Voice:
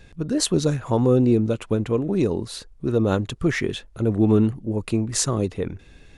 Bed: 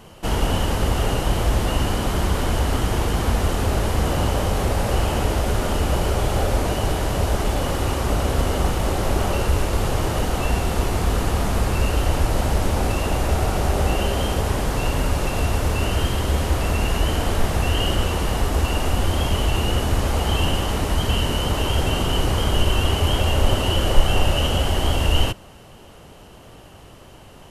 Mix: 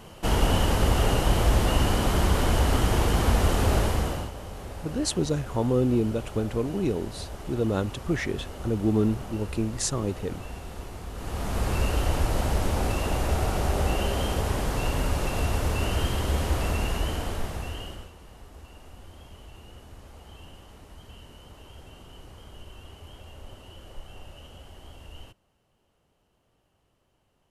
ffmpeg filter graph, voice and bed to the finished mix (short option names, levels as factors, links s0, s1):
-filter_complex "[0:a]adelay=4650,volume=0.531[s0];[1:a]volume=3.55,afade=t=out:st=3.77:d=0.54:silence=0.158489,afade=t=in:st=11.14:d=0.58:silence=0.237137,afade=t=out:st=16.63:d=1.49:silence=0.0841395[s1];[s0][s1]amix=inputs=2:normalize=0"